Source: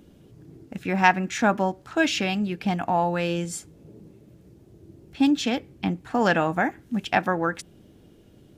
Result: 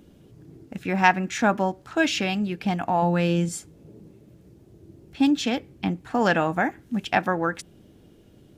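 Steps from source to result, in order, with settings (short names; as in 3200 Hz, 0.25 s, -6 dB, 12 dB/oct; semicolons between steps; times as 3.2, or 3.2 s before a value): 3.02–3.49 bell 200 Hz +7.5 dB 1.2 oct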